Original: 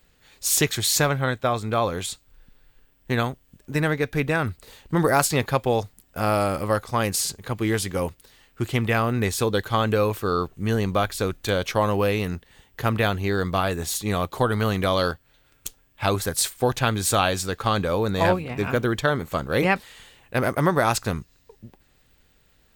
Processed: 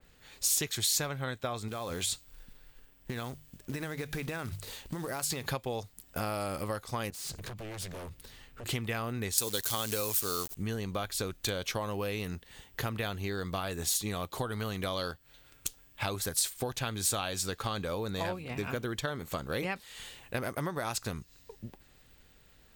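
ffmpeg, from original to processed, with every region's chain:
ffmpeg -i in.wav -filter_complex "[0:a]asettb=1/sr,asplit=3[link_01][link_02][link_03];[link_01]atrim=end=1.684[link_04];[link_02]atrim=start=1.68:end=5.47,asetpts=PTS-STARTPTS,afade=type=in:duration=0.004:curve=qsin,afade=type=out:start_time=3.786:duration=0.004:curve=qsin,bandreject=frequency=50:width_type=h:width=6,bandreject=frequency=100:width_type=h:width=6,bandreject=frequency=150:width_type=h:width=6,acrusher=bits=5:mode=log:mix=0:aa=0.000001,acompressor=threshold=-29dB:ratio=10:attack=3.2:release=140:knee=1:detection=peak[link_05];[link_03]atrim=start=5.466[link_06];[link_04][link_05]acrossfade=duration=0.004:curve1=hsin:curve2=qsin[link_07];[link_07][link_06]acrossfade=duration=0.004:curve1=qsin:curve2=hsin,asettb=1/sr,asplit=3[link_08][link_09][link_10];[link_08]atrim=end=7.104[link_11];[link_09]atrim=start=7.1:end=8.66,asetpts=PTS-STARTPTS,afade=type=in:duration=0.004:curve=qsin,afade=type=out:start_time=1.556:duration=0.004:curve=qsin,bass=frequency=250:gain=7,treble=frequency=4000:gain=-3,acompressor=threshold=-34dB:ratio=8:attack=3.2:release=140:knee=1:detection=peak,aeval=exprs='0.015*(abs(mod(val(0)/0.015+3,4)-2)-1)':channel_layout=same[link_12];[link_10]atrim=start=8.656[link_13];[link_11][link_12]acrossfade=duration=0.004:curve1=hsin:curve2=qsin[link_14];[link_14][link_13]acrossfade=duration=0.004:curve1=qsin:curve2=hsin,asettb=1/sr,asplit=3[link_15][link_16][link_17];[link_15]atrim=end=9.384[link_18];[link_16]atrim=start=9.38:end=10.55,asetpts=PTS-STARTPTS,afade=type=in:duration=0.004:curve=qsin,afade=type=out:start_time=1.166:duration=0.004:curve=qsin,acrusher=bits=7:dc=4:mix=0:aa=0.000001,acompressor=mode=upward:threshold=-23dB:ratio=2.5:attack=3.2:release=140:knee=2.83:detection=peak,bass=frequency=250:gain=-3,treble=frequency=4000:gain=15[link_19];[link_17]atrim=start=10.546[link_20];[link_18][link_19]acrossfade=duration=0.004:curve1=hsin:curve2=qsin[link_21];[link_21][link_20]acrossfade=duration=0.004:curve1=qsin:curve2=hsin,acompressor=threshold=-33dB:ratio=5,adynamicequalizer=threshold=0.00224:dfrequency=2600:dqfactor=0.7:tfrequency=2600:tqfactor=0.7:attack=5:release=100:ratio=0.375:range=3:mode=boostabove:tftype=highshelf" out.wav

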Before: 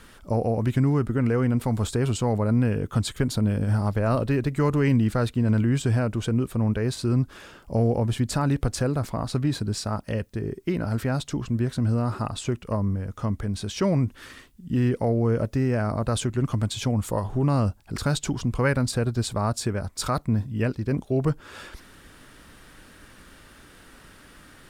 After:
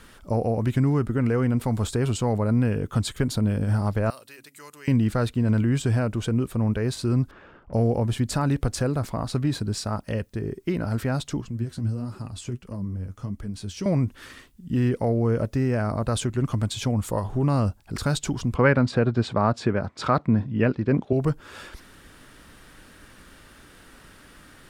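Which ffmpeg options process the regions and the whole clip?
ffmpeg -i in.wav -filter_complex "[0:a]asettb=1/sr,asplit=3[link_01][link_02][link_03];[link_01]atrim=end=4.104[link_04];[link_02]atrim=start=4.1:end=4.88,asetpts=PTS-STARTPTS,afade=type=in:duration=0.004:curve=qsin,afade=type=out:start_time=0.776:duration=0.004:curve=qsin,aderivative,bandreject=frequency=69.1:width_type=h:width=4,bandreject=frequency=138.2:width_type=h:width=4,bandreject=frequency=207.3:width_type=h:width=4,bandreject=frequency=276.4:width_type=h:width=4[link_05];[link_03]atrim=start=4.876[link_06];[link_04][link_05]acrossfade=duration=0.004:curve1=hsin:curve2=qsin[link_07];[link_07][link_06]acrossfade=duration=0.004:curve1=qsin:curve2=hsin,asettb=1/sr,asplit=3[link_08][link_09][link_10];[link_08]atrim=end=7.314[link_11];[link_09]atrim=start=7.31:end=7.73,asetpts=PTS-STARTPTS,afade=type=in:duration=0.004:curve=qsin,afade=type=out:start_time=0.416:duration=0.004:curve=qsin,lowpass=1700,aeval=exprs='(tanh(70.8*val(0)+0.4)-tanh(0.4))/70.8':channel_layout=same[link_12];[link_10]atrim=start=7.726[link_13];[link_11][link_12]acrossfade=duration=0.004:curve1=hsin:curve2=qsin[link_14];[link_14][link_13]acrossfade=duration=0.004:curve1=qsin:curve2=hsin,asettb=1/sr,asplit=3[link_15][link_16][link_17];[link_15]atrim=end=11.414[link_18];[link_16]atrim=start=11.41:end=13.86,asetpts=PTS-STARTPTS,afade=type=in:duration=0.004:curve=qsin,afade=type=out:start_time=2.446:duration=0.004:curve=qsin,bandreject=frequency=3700:width=14,acrossover=split=350|3000[link_19][link_20][link_21];[link_20]acompressor=threshold=-48dB:ratio=2:attack=3.2:release=140:knee=2.83:detection=peak[link_22];[link_19][link_22][link_21]amix=inputs=3:normalize=0,flanger=delay=3:depth=9.1:regen=45:speed=1.5:shape=triangular[link_23];[link_17]atrim=start=13.856[link_24];[link_18][link_23]acrossfade=duration=0.004:curve1=hsin:curve2=qsin[link_25];[link_25][link_24]acrossfade=duration=0.004:curve1=qsin:curve2=hsin,asettb=1/sr,asplit=3[link_26][link_27][link_28];[link_26]atrim=end=18.554[link_29];[link_27]atrim=start=18.55:end=21.13,asetpts=PTS-STARTPTS,afade=type=in:duration=0.004:curve=qsin,afade=type=out:start_time=2.576:duration=0.004:curve=qsin,acontrast=30,highpass=130,lowpass=2800[link_30];[link_28]atrim=start=21.126[link_31];[link_29][link_30]acrossfade=duration=0.004:curve1=hsin:curve2=qsin[link_32];[link_32][link_31]acrossfade=duration=0.004:curve1=qsin:curve2=hsin" out.wav

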